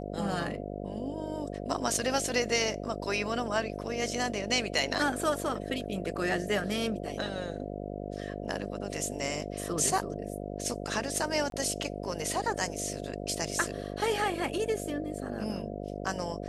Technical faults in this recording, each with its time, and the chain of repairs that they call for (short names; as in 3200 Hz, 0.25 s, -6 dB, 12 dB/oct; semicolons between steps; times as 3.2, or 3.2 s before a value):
buzz 50 Hz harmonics 14 -38 dBFS
11.5–11.52 gap 22 ms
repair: de-hum 50 Hz, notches 14; interpolate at 11.5, 22 ms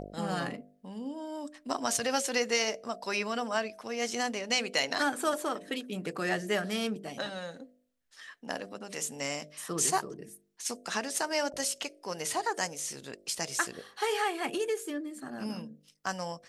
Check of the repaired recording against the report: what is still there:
none